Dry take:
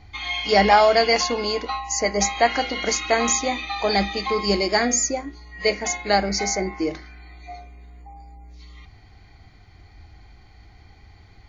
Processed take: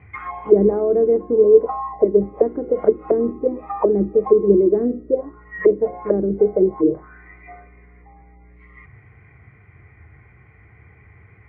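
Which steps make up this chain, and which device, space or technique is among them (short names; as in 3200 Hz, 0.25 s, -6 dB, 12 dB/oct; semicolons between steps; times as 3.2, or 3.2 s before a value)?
low shelf 360 Hz +3 dB; envelope filter bass rig (envelope low-pass 340–2600 Hz down, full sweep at -18 dBFS; speaker cabinet 72–2000 Hz, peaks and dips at 130 Hz +9 dB, 270 Hz -5 dB, 450 Hz +7 dB, 780 Hz -8 dB, 1100 Hz +4 dB); gain -1 dB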